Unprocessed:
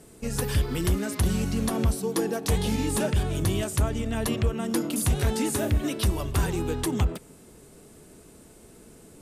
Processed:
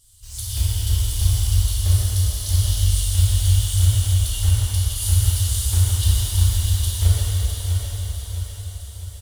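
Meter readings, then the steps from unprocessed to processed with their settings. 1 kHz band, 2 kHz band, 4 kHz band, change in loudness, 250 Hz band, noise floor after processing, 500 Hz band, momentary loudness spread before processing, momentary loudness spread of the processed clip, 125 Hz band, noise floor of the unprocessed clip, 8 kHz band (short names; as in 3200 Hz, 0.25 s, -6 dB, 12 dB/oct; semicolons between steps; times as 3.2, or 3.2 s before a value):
-8.5 dB, -5.0 dB, +8.5 dB, +6.5 dB, under -15 dB, -37 dBFS, under -15 dB, 3 LU, 11 LU, +10.5 dB, -51 dBFS, +8.5 dB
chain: FFT band-reject 110–2800 Hz; short-mantissa float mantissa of 2-bit; feedback echo 0.656 s, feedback 48%, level -7.5 dB; plate-style reverb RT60 4.9 s, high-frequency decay 1×, DRR -9 dB; gain -1.5 dB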